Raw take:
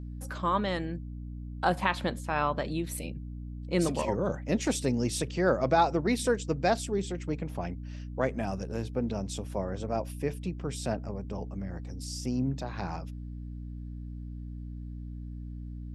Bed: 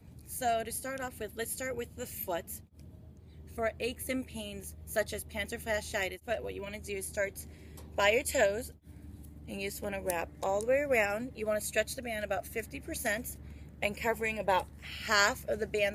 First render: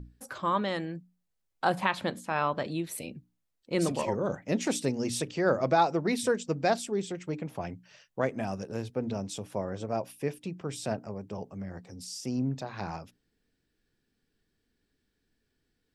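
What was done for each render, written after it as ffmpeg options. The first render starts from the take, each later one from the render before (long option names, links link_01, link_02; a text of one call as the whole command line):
ffmpeg -i in.wav -af "bandreject=frequency=60:width_type=h:width=6,bandreject=frequency=120:width_type=h:width=6,bandreject=frequency=180:width_type=h:width=6,bandreject=frequency=240:width_type=h:width=6,bandreject=frequency=300:width_type=h:width=6" out.wav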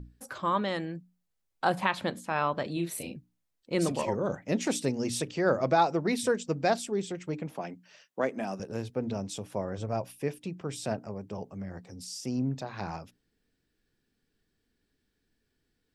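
ffmpeg -i in.wav -filter_complex "[0:a]asettb=1/sr,asplit=3[link_01][link_02][link_03];[link_01]atrim=end=2.734[link_04];[link_02]atrim=start=2.73:end=3.16,asetpts=PTS-STARTPTS,afade=type=in:duration=0.004:curve=qsin,afade=type=out:start_time=0.426:duration=0.004:curve=qsin,asplit=2[link_05][link_06];[link_06]adelay=35,volume=-5dB[link_07];[link_05][link_07]amix=inputs=2:normalize=0,atrim=end_sample=18963[link_08];[link_03]atrim=start=3.156[link_09];[link_04][link_08]acrossfade=duration=0.004:curve1=hsin:curve2=qsin[link_10];[link_10][link_09]acrossfade=duration=0.004:curve1=qsin:curve2=hsin,asettb=1/sr,asplit=3[link_11][link_12][link_13];[link_11]atrim=end=7.514[link_14];[link_12]atrim=start=7.51:end=8.6,asetpts=PTS-STARTPTS,afade=type=in:duration=0.004:curve=qsin,afade=type=out:start_time=1.086:duration=0.004:curve=qsin,highpass=frequency=180:width=0.5412,highpass=frequency=180:width=1.3066[link_15];[link_13]atrim=start=8.596[link_16];[link_14][link_15]acrossfade=duration=0.004:curve1=hsin:curve2=qsin[link_17];[link_17][link_16]acrossfade=duration=0.004:curve1=qsin:curve2=hsin,asplit=3[link_18][link_19][link_20];[link_18]afade=type=out:start_time=9.77:duration=0.02[link_21];[link_19]asubboost=boost=2.5:cutoff=140,afade=type=in:start_time=9.77:duration=0.02,afade=type=out:start_time=10.17:duration=0.02[link_22];[link_20]afade=type=in:start_time=10.17:duration=0.02[link_23];[link_21][link_22][link_23]amix=inputs=3:normalize=0" out.wav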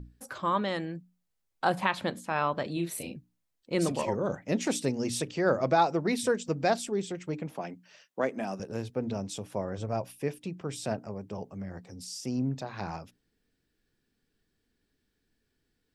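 ffmpeg -i in.wav -filter_complex "[0:a]asplit=3[link_01][link_02][link_03];[link_01]afade=type=out:start_time=6.45:duration=0.02[link_04];[link_02]acompressor=mode=upward:threshold=-32dB:ratio=2.5:attack=3.2:release=140:knee=2.83:detection=peak,afade=type=in:start_time=6.45:duration=0.02,afade=type=out:start_time=6.89:duration=0.02[link_05];[link_03]afade=type=in:start_time=6.89:duration=0.02[link_06];[link_04][link_05][link_06]amix=inputs=3:normalize=0" out.wav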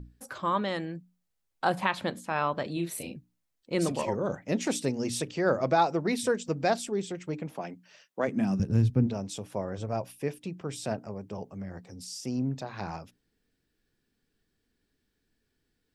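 ffmpeg -i in.wav -filter_complex "[0:a]asplit=3[link_01][link_02][link_03];[link_01]afade=type=out:start_time=8.27:duration=0.02[link_04];[link_02]asubboost=boost=10:cutoff=180,afade=type=in:start_time=8.27:duration=0.02,afade=type=out:start_time=9.06:duration=0.02[link_05];[link_03]afade=type=in:start_time=9.06:duration=0.02[link_06];[link_04][link_05][link_06]amix=inputs=3:normalize=0" out.wav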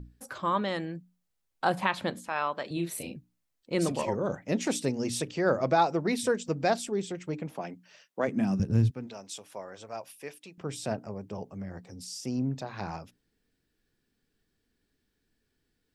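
ffmpeg -i in.wav -filter_complex "[0:a]asettb=1/sr,asplit=3[link_01][link_02][link_03];[link_01]atrim=end=2.284[link_04];[link_02]atrim=start=2.28:end=2.71,asetpts=PTS-STARTPTS,afade=type=in:duration=0.004:curve=qsin,afade=type=out:start_time=0.426:duration=0.004:curve=qsin,highpass=frequency=610:poles=1[link_05];[link_03]atrim=start=2.706[link_06];[link_04][link_05]acrossfade=duration=0.004:curve1=hsin:curve2=qsin[link_07];[link_07][link_06]acrossfade=duration=0.004:curve1=qsin:curve2=hsin,asettb=1/sr,asplit=3[link_08][link_09][link_10];[link_08]atrim=end=8.914[link_11];[link_09]atrim=start=8.91:end=10.58,asetpts=PTS-STARTPTS,afade=type=in:duration=0.004:curve=qsin,afade=type=out:start_time=1.666:duration=0.004:curve=qsin,highpass=frequency=1200:poles=1[link_12];[link_10]atrim=start=10.576[link_13];[link_11][link_12]acrossfade=duration=0.004:curve1=hsin:curve2=qsin[link_14];[link_14][link_13]acrossfade=duration=0.004:curve1=qsin:curve2=hsin" out.wav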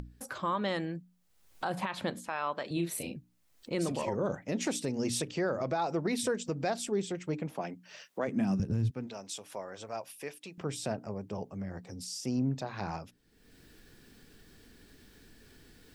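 ffmpeg -i in.wav -af "acompressor=mode=upward:threshold=-39dB:ratio=2.5,alimiter=limit=-22dB:level=0:latency=1:release=96" out.wav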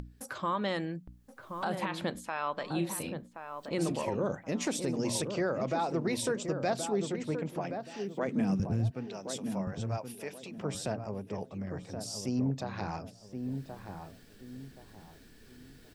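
ffmpeg -i in.wav -filter_complex "[0:a]asplit=2[link_01][link_02];[link_02]adelay=1075,lowpass=frequency=1100:poles=1,volume=-6dB,asplit=2[link_03][link_04];[link_04]adelay=1075,lowpass=frequency=1100:poles=1,volume=0.33,asplit=2[link_05][link_06];[link_06]adelay=1075,lowpass=frequency=1100:poles=1,volume=0.33,asplit=2[link_07][link_08];[link_08]adelay=1075,lowpass=frequency=1100:poles=1,volume=0.33[link_09];[link_01][link_03][link_05][link_07][link_09]amix=inputs=5:normalize=0" out.wav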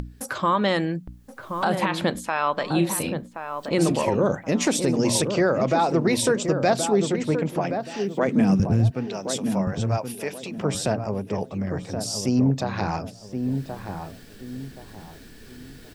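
ffmpeg -i in.wav -af "volume=10.5dB" out.wav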